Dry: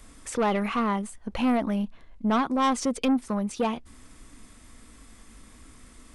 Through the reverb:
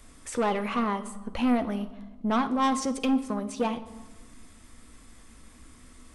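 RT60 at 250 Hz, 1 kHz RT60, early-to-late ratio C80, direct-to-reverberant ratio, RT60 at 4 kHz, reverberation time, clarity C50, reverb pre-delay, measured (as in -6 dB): 2.2 s, 1.3 s, 16.5 dB, 9.0 dB, 0.80 s, 1.3 s, 14.0 dB, 12 ms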